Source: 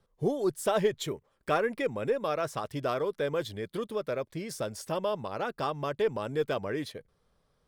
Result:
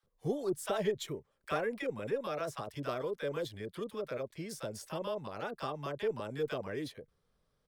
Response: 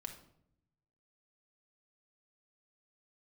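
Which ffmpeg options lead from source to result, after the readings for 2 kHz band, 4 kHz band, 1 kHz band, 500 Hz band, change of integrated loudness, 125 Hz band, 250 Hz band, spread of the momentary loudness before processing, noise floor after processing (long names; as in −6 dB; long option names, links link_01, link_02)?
−5.5 dB, −5.0 dB, −7.0 dB, −6.0 dB, −6.0 dB, −5.0 dB, −5.0 dB, 8 LU, −78 dBFS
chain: -filter_complex "[0:a]acrossover=split=830[link_01][link_02];[link_01]adelay=30[link_03];[link_03][link_02]amix=inputs=2:normalize=0,volume=-5dB"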